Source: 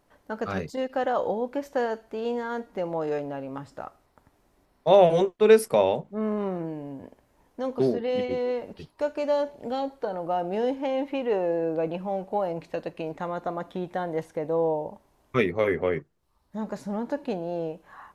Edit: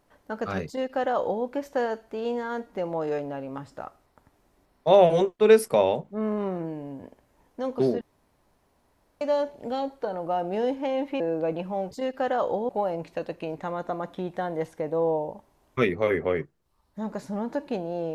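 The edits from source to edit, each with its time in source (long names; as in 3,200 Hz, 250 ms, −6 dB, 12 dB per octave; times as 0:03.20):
0:00.67–0:01.45: duplicate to 0:12.26
0:08.01–0:09.21: fill with room tone
0:11.20–0:11.55: remove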